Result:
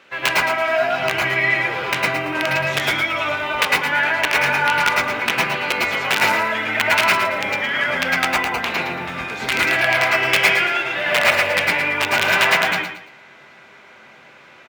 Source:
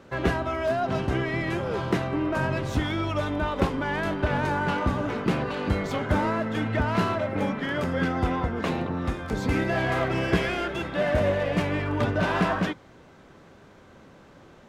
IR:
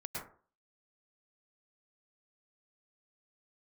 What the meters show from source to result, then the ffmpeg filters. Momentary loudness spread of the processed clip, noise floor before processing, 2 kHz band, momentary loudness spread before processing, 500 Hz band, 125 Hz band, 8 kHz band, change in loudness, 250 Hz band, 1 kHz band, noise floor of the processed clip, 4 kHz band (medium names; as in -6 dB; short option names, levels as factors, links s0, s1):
6 LU, -52 dBFS, +15.0 dB, 4 LU, +3.5 dB, -6.5 dB, +17.0 dB, +9.0 dB, -5.0 dB, +8.5 dB, -46 dBFS, +15.5 dB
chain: -filter_complex "[0:a]acrusher=bits=9:mode=log:mix=0:aa=0.000001,aeval=exprs='(mod(5.62*val(0)+1,2)-1)/5.62':c=same,highpass=f=830:p=1,equalizer=f=2500:t=o:w=1.3:g=13,aecho=1:1:114|228|342|456:0.376|0.113|0.0338|0.0101[s0];[1:a]atrim=start_sample=2205,afade=t=out:st=0.18:d=0.01,atrim=end_sample=8379[s1];[s0][s1]afir=irnorm=-1:irlink=0,volume=2"